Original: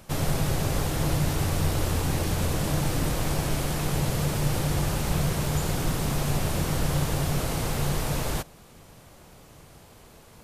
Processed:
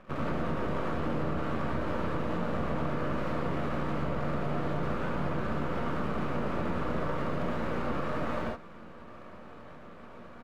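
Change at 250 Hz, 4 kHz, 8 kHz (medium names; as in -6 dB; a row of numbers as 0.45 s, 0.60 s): -3.0 dB, -14.5 dB, under -25 dB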